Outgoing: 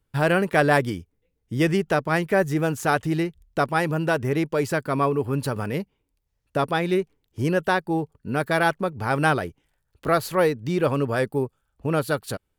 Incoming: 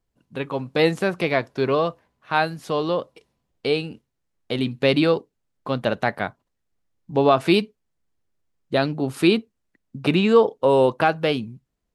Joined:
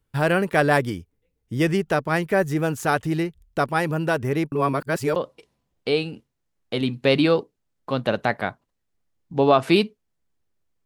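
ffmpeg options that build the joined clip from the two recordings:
-filter_complex "[0:a]apad=whole_dur=10.85,atrim=end=10.85,asplit=2[a][b];[a]atrim=end=4.522[c];[b]atrim=start=4.518:end=5.162,asetpts=PTS-STARTPTS,areverse[d];[1:a]atrim=start=2.938:end=8.63[e];[c][d]acrossfade=d=0.004:c1=hsin:c2=hsin[f];[f][e]acrossfade=d=0.004:c1=hsin:c2=hsin"

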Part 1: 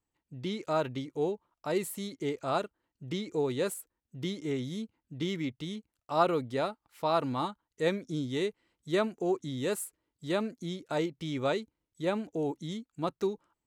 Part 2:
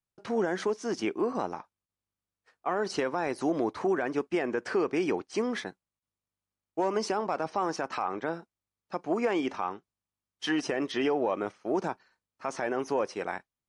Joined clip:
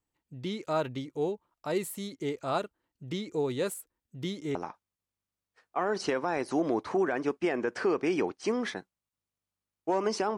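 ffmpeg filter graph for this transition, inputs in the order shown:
-filter_complex "[0:a]apad=whole_dur=10.37,atrim=end=10.37,atrim=end=4.552[a];[1:a]atrim=start=1.448:end=7.27[b];[a][b]acrossfade=d=0.004:c1=hsin:c2=hsin"

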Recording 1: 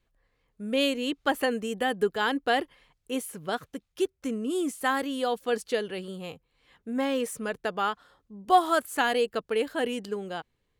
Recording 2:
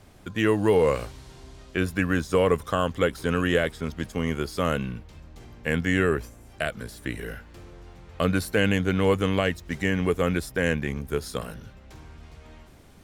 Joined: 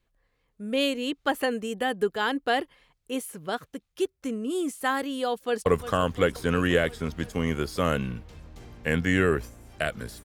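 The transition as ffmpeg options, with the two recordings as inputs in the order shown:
-filter_complex "[0:a]apad=whole_dur=10.24,atrim=end=10.24,atrim=end=5.662[a];[1:a]atrim=start=2.458:end=7.04[b];[a][b]acrossfade=d=0.004:c1=hsin:c2=hsin,asplit=2[c][d];[d]afade=t=in:st=5.3:d=0.01,afade=t=out:st=5.66:d=0.01,aecho=0:1:350|700|1050|1400|1750|2100|2450|2800|3150|3500:0.266073|0.186251|0.130376|0.0912629|0.063884|0.0447188|0.0313032|0.0219122|0.0153386|0.010737[e];[c][e]amix=inputs=2:normalize=0"

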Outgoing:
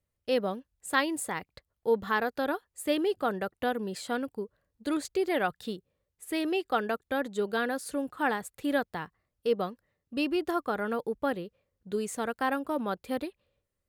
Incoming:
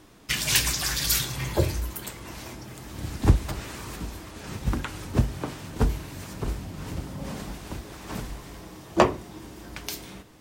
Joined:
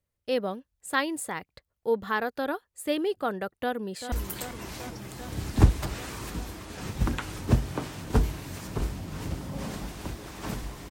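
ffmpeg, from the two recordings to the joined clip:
-filter_complex "[0:a]apad=whole_dur=10.9,atrim=end=10.9,atrim=end=4.122[a];[1:a]atrim=start=1.778:end=8.56[b];[a][b]acrossfade=d=0.004:c1=hsin:c2=hsin,asplit=2[c][d];[d]afade=t=in:st=3.52:d=0.01,afade=t=out:st=4.12:d=0.01,aecho=0:1:390|780|1170|1560|1950|2340|2730|3120|3510|3900|4290|4680:0.298538|0.238831|0.191064|0.152852|0.122281|0.097825|0.07826|0.062608|0.0500864|0.0400691|0.0320553|0.0256442[e];[c][e]amix=inputs=2:normalize=0"

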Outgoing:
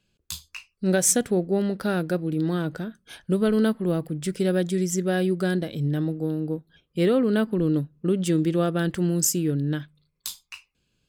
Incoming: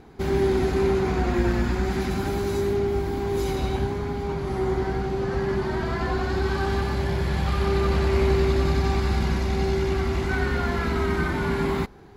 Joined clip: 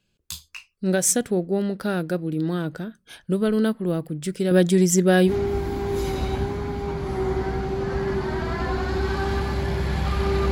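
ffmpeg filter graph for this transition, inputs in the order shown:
-filter_complex "[0:a]asettb=1/sr,asplit=3[a][b][c];[a]atrim=end=4.514[d];[b]atrim=start=4.51:end=5.32,asetpts=PTS-STARTPTS,afade=t=in:d=0.004:c=qsin,afade=t=out:st=0.806:d=0.004:c=qsin,acontrast=85[e];[c]atrim=start=5.316[f];[d][e]acrossfade=d=0.004:c1=hsin:c2=qsin[g];[g][f]acrossfade=d=0.004:c1=qsin:c2=hsin,apad=whole_dur=10.51,atrim=end=10.51,atrim=end=5.32,asetpts=PTS-STARTPTS[h];[1:a]atrim=start=2.67:end=7.92,asetpts=PTS-STARTPTS[i];[h][i]acrossfade=d=0.06:c1=tri:c2=tri"

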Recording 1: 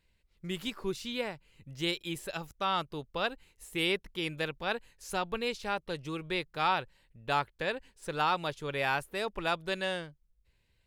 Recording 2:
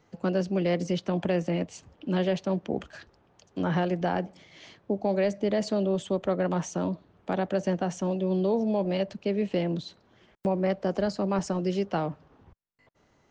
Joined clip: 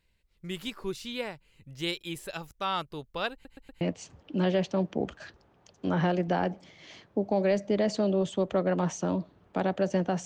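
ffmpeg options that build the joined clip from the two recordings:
-filter_complex "[0:a]apad=whole_dur=10.25,atrim=end=10.25,asplit=4[a][b][c][d];[a]atrim=end=3.452[e];[b]atrim=start=3.328:end=3.452[f];[c]atrim=start=3.328:end=3.452[g];[d]atrim=start=3.328:end=3.452[h];[1:a]atrim=start=1.538:end=7.98[i];[e][f]acrossfade=d=0.004:c1=hsin:c2=hsin[j];[j][g]acrossfade=d=0.004:c1=hsin:c2=hsin[k];[k][h]acrossfade=d=0.004:c1=hsin:c2=hsin[l];[l][i]acrossfade=d=0.004:c1=hsin:c2=hsin"

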